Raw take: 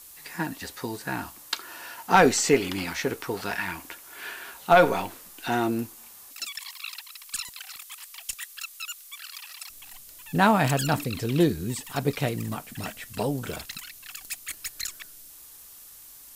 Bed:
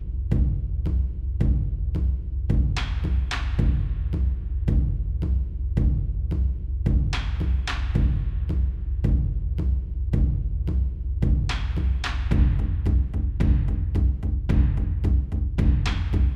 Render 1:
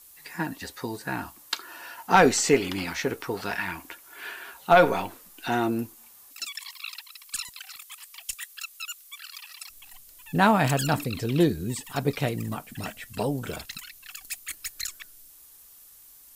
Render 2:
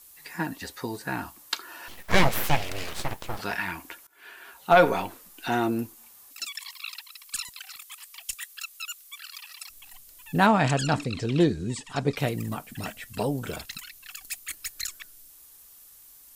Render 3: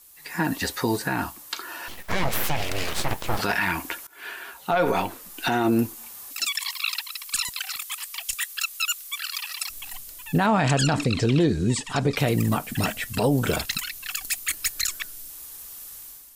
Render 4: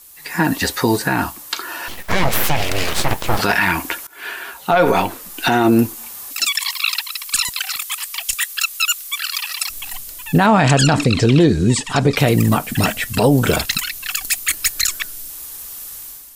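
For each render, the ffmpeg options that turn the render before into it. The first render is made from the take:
ffmpeg -i in.wav -af "afftdn=noise_reduction=6:noise_floor=-48" out.wav
ffmpeg -i in.wav -filter_complex "[0:a]asettb=1/sr,asplit=3[link_01][link_02][link_03];[link_01]atrim=end=1.884[link_04];[link_02]atrim=start=1.88:end=3.39,asetpts=PTS-STARTPTS,afade=type=in:duration=0.004:curve=qsin,afade=type=out:start_time=1.506:duration=0.004:curve=qsin,aeval=exprs='abs(val(0))':channel_layout=same[link_05];[link_03]atrim=start=3.386[link_06];[link_04][link_05]acrossfade=duration=0.004:curve1=hsin:curve2=qsin[link_07];[link_07][link_06]acrossfade=duration=0.004:curve1=qsin:curve2=hsin,asettb=1/sr,asplit=3[link_08][link_09][link_10];[link_08]atrim=end=10.464[link_11];[link_09]atrim=start=10.46:end=12.17,asetpts=PTS-STARTPTS,afade=type=in:duration=0.004:curve=qsin,afade=type=out:start_time=1.706:duration=0.004:curve=qsin,lowpass=frequency=8000:width=0.5412,lowpass=frequency=8000:width=1.3066[link_12];[link_10]atrim=start=12.166[link_13];[link_11][link_12]acrossfade=duration=0.004:curve1=hsin:curve2=qsin[link_14];[link_14][link_13]acrossfade=duration=0.004:curve1=qsin:curve2=hsin,asplit=2[link_15][link_16];[link_15]atrim=end=4.07,asetpts=PTS-STARTPTS,afade=type=out:start_time=4.066:duration=0.004:curve=hsin:silence=0.0891251[link_17];[link_16]atrim=start=4.07,asetpts=PTS-STARTPTS,afade=type=in:duration=0.72:silence=0.0891251[link_18];[link_17][link_18]concat=n=2:v=0:a=1" out.wav
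ffmpeg -i in.wav -af "dynaudnorm=framelen=140:gausssize=5:maxgain=11dB,alimiter=limit=-12.5dB:level=0:latency=1:release=55" out.wav
ffmpeg -i in.wav -af "volume=8dB" out.wav

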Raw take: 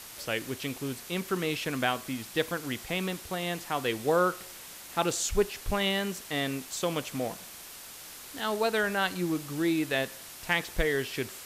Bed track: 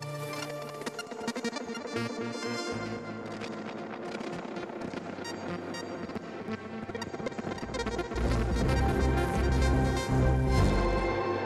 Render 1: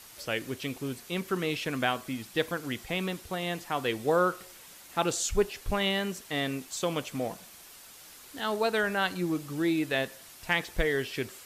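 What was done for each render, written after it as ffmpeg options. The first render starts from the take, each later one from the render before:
ffmpeg -i in.wav -af "afftdn=noise_reduction=6:noise_floor=-46" out.wav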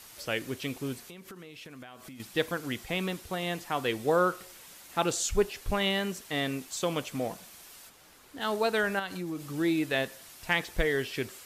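ffmpeg -i in.wav -filter_complex "[0:a]asettb=1/sr,asplit=3[link_01][link_02][link_03];[link_01]atrim=end=1.074[link_04];[link_02]atrim=start=1.07:end=2.2,asetpts=PTS-STARTPTS,afade=type=in:duration=0.004:curve=qsin,afade=type=out:start_time=1.126:duration=0.004:curve=qsin,acompressor=threshold=-42dB:ratio=16:attack=3.2:release=140:knee=1:detection=peak[link_05];[link_03]atrim=start=2.196[link_06];[link_04][link_05]acrossfade=duration=0.004:curve1=hsin:curve2=qsin[link_07];[link_07][link_06]acrossfade=duration=0.004:curve1=qsin:curve2=hsin,asplit=3[link_08][link_09][link_10];[link_08]afade=type=out:start_time=7.88:duration=0.02[link_11];[link_09]highshelf=frequency=2500:gain=-9.5,afade=type=in:start_time=7.88:duration=0.02,afade=type=out:start_time=8.4:duration=0.02[link_12];[link_10]afade=type=in:start_time=8.4:duration=0.02[link_13];[link_11][link_12][link_13]amix=inputs=3:normalize=0,asettb=1/sr,asplit=3[link_14][link_15][link_16];[link_14]atrim=end=8.994[link_17];[link_15]atrim=start=8.99:end=9.54,asetpts=PTS-STARTPTS,afade=type=in:duration=0.004:curve=qsin,afade=type=out:start_time=0.546:duration=0.004:curve=qsin,acompressor=threshold=-33dB:ratio=3:attack=3.2:release=140:knee=1:detection=peak[link_18];[link_16]atrim=start=9.536[link_19];[link_17][link_18]acrossfade=duration=0.004:curve1=hsin:curve2=qsin[link_20];[link_20][link_19]acrossfade=duration=0.004:curve1=qsin:curve2=hsin" out.wav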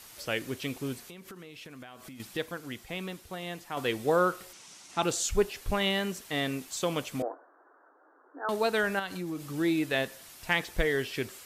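ffmpeg -i in.wav -filter_complex "[0:a]asettb=1/sr,asplit=3[link_01][link_02][link_03];[link_01]atrim=end=4.534[link_04];[link_02]atrim=start=4.53:end=5.03,asetpts=PTS-STARTPTS,afade=type=in:duration=0.004:curve=qsin,afade=type=out:start_time=0.496:duration=0.004:curve=qsin,highpass=110,equalizer=frequency=520:width_type=q:width=4:gain=-7,equalizer=frequency=1700:width_type=q:width=4:gain=-5,equalizer=frequency=5800:width_type=q:width=4:gain=7,lowpass=frequency=9100:width=0.5412,lowpass=frequency=9100:width=1.3066[link_05];[link_03]atrim=start=5.026[link_06];[link_04][link_05]acrossfade=duration=0.004:curve1=hsin:curve2=qsin[link_07];[link_07][link_06]acrossfade=duration=0.004:curve1=qsin:curve2=hsin,asettb=1/sr,asplit=3[link_08][link_09][link_10];[link_08]atrim=end=7.224[link_11];[link_09]atrim=start=7.22:end=8.49,asetpts=PTS-STARTPTS,afade=type=in:duration=0.004:curve=qsin,afade=type=out:start_time=1.266:duration=0.004:curve=qsin,asuperpass=centerf=670:order=20:qfactor=0.5[link_12];[link_10]atrim=start=8.486[link_13];[link_11][link_12]acrossfade=duration=0.004:curve1=hsin:curve2=qsin[link_14];[link_14][link_13]acrossfade=duration=0.004:curve1=qsin:curve2=hsin,asplit=3[link_15][link_16][link_17];[link_15]atrim=end=2.372[link_18];[link_16]atrim=start=2.368:end=3.772,asetpts=PTS-STARTPTS,volume=-5.5dB[link_19];[link_17]atrim=start=3.768[link_20];[link_18][link_19]acrossfade=duration=0.004:curve1=hsin:curve2=hsin[link_21];[link_21][link_20]acrossfade=duration=0.004:curve1=hsin:curve2=hsin" out.wav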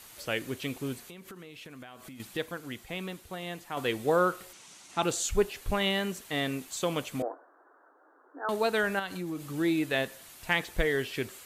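ffmpeg -i in.wav -af "equalizer=frequency=5300:width=4.3:gain=-4.5" out.wav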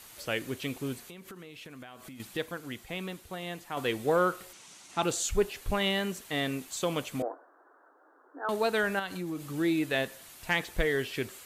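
ffmpeg -i in.wav -af "asoftclip=type=tanh:threshold=-13.5dB" out.wav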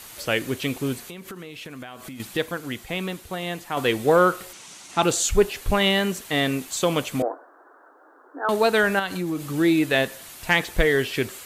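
ffmpeg -i in.wav -af "volume=8.5dB" out.wav

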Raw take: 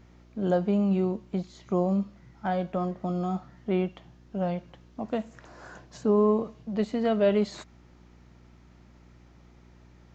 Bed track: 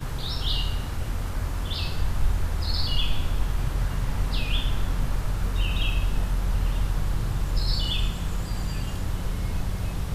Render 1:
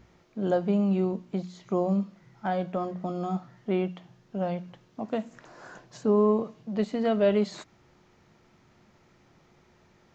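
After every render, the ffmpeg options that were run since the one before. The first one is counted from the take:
ffmpeg -i in.wav -af "bandreject=frequency=60:width_type=h:width=4,bandreject=frequency=120:width_type=h:width=4,bandreject=frequency=180:width_type=h:width=4,bandreject=frequency=240:width_type=h:width=4,bandreject=frequency=300:width_type=h:width=4" out.wav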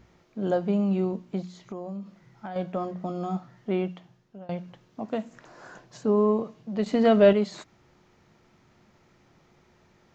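ffmpeg -i in.wav -filter_complex "[0:a]asettb=1/sr,asplit=3[link_01][link_02][link_03];[link_01]atrim=end=1.594[link_04];[link_02]atrim=start=1.59:end=2.56,asetpts=PTS-STARTPTS,afade=type=in:duration=0.004:curve=qsin,afade=type=out:start_time=0.966:duration=0.004:curve=qsin,acompressor=threshold=-33dB:ratio=5:attack=3.2:release=140:knee=1:detection=peak[link_05];[link_03]atrim=start=2.556[link_06];[link_04][link_05]acrossfade=duration=0.004:curve1=hsin:curve2=qsin[link_07];[link_07][link_06]acrossfade=duration=0.004:curve1=qsin:curve2=hsin,asettb=1/sr,asplit=3[link_08][link_09][link_10];[link_08]atrim=end=6.864[link_11];[link_09]atrim=start=6.86:end=7.33,asetpts=PTS-STARTPTS,afade=type=in:duration=0.004:curve=qsin,afade=type=out:start_time=0.466:duration=0.004:curve=qsin,acontrast=59[link_12];[link_10]atrim=start=7.326[link_13];[link_11][link_12]acrossfade=duration=0.004:curve1=hsin:curve2=qsin[link_14];[link_14][link_13]acrossfade=duration=0.004:curve1=qsin:curve2=hsin,asplit=2[link_15][link_16];[link_15]atrim=end=4.49,asetpts=PTS-STARTPTS,afade=type=out:start_time=3.91:duration=0.58:silence=0.0749894[link_17];[link_16]atrim=start=4.49,asetpts=PTS-STARTPTS,afade=type=in:duration=0.004:curve=hsin:silence=0.0749894[link_18];[link_17][link_18]concat=n=2:v=0:a=1" out.wav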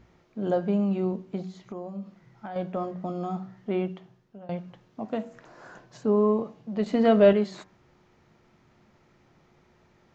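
ffmpeg -i in.wav -af "highshelf=frequency=4200:gain=-6,bandreject=frequency=94.68:width_type=h:width=4,bandreject=frequency=189.36:width_type=h:width=4,bandreject=frequency=284.04:width_type=h:width=4,bandreject=frequency=378.72:width_type=h:width=4,bandreject=frequency=473.4:width_type=h:width=4,bandreject=frequency=568.08:width_type=h:width=4,bandreject=frequency=662.76:width_type=h:width=4,bandreject=frequency=757.44:width_type=h:width=4,bandreject=frequency=852.12:width_type=h:width=4,bandreject=frequency=946.8:width_type=h:width=4,bandreject=frequency=1041.48:width_type=h:width=4,bandreject=frequency=1136.16:width_type=h:width=4,bandreject=frequency=1230.84:width_type=h:width=4,bandreject=frequency=1325.52:width_type=h:width=4,bandreject=frequency=1420.2:width_type=h:width=4,bandreject=frequency=1514.88:width_type=h:width=4,bandreject=frequency=1609.56:width_type=h:width=4,bandreject=frequency=1704.24:width_type=h:width=4,bandreject=frequency=1798.92:width_type=h:width=4" out.wav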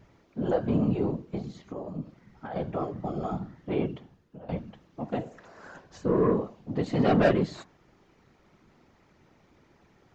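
ffmpeg -i in.wav -af "aeval=exprs='0.447*(cos(1*acos(clip(val(0)/0.447,-1,1)))-cos(1*PI/2))+0.0891*(cos(5*acos(clip(val(0)/0.447,-1,1)))-cos(5*PI/2))':channel_layout=same,afftfilt=real='hypot(re,im)*cos(2*PI*random(0))':imag='hypot(re,im)*sin(2*PI*random(1))':win_size=512:overlap=0.75" out.wav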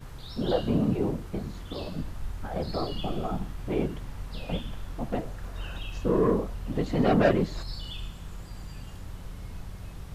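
ffmpeg -i in.wav -i bed.wav -filter_complex "[1:a]volume=-12dB[link_01];[0:a][link_01]amix=inputs=2:normalize=0" out.wav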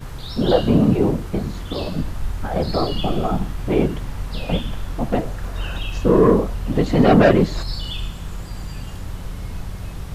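ffmpeg -i in.wav -af "volume=10dB,alimiter=limit=-2dB:level=0:latency=1" out.wav

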